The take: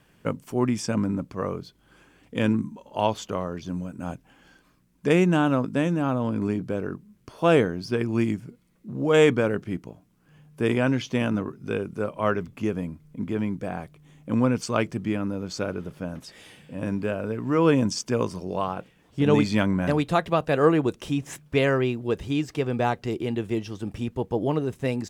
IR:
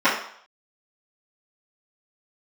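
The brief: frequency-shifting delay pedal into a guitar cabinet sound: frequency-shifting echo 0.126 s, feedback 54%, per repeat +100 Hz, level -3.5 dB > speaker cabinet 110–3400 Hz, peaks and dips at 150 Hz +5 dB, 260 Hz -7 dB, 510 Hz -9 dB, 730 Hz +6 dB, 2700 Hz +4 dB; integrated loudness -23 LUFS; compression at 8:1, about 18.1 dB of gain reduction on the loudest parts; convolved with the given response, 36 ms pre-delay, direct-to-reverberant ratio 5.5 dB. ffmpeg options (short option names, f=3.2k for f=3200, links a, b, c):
-filter_complex "[0:a]acompressor=threshold=-33dB:ratio=8,asplit=2[a][b];[1:a]atrim=start_sample=2205,adelay=36[c];[b][c]afir=irnorm=-1:irlink=0,volume=-27dB[d];[a][d]amix=inputs=2:normalize=0,asplit=8[e][f][g][h][i][j][k][l];[f]adelay=126,afreqshift=100,volume=-3.5dB[m];[g]adelay=252,afreqshift=200,volume=-8.9dB[n];[h]adelay=378,afreqshift=300,volume=-14.2dB[o];[i]adelay=504,afreqshift=400,volume=-19.6dB[p];[j]adelay=630,afreqshift=500,volume=-24.9dB[q];[k]adelay=756,afreqshift=600,volume=-30.3dB[r];[l]adelay=882,afreqshift=700,volume=-35.6dB[s];[e][m][n][o][p][q][r][s]amix=inputs=8:normalize=0,highpass=110,equalizer=f=150:t=q:w=4:g=5,equalizer=f=260:t=q:w=4:g=-7,equalizer=f=510:t=q:w=4:g=-9,equalizer=f=730:t=q:w=4:g=6,equalizer=f=2.7k:t=q:w=4:g=4,lowpass=f=3.4k:w=0.5412,lowpass=f=3.4k:w=1.3066,volume=14dB"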